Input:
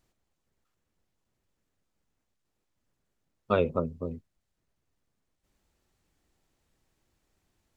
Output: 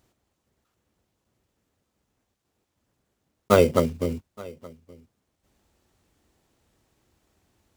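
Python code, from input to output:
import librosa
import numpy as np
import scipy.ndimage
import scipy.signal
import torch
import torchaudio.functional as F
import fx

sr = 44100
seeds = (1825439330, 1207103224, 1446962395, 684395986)

p1 = fx.block_float(x, sr, bits=5)
p2 = scipy.signal.sosfilt(scipy.signal.butter(2, 53.0, 'highpass', fs=sr, output='sos'), p1)
p3 = fx.peak_eq(p2, sr, hz=160.0, db=-3.5, octaves=0.32)
p4 = p3 + 10.0 ** (-22.5 / 20.0) * np.pad(p3, (int(872 * sr / 1000.0), 0))[:len(p3)]
p5 = fx.sample_hold(p4, sr, seeds[0], rate_hz=2600.0, jitter_pct=0)
p6 = p4 + (p5 * librosa.db_to_amplitude(-7.5))
y = p6 * librosa.db_to_amplitude(6.0)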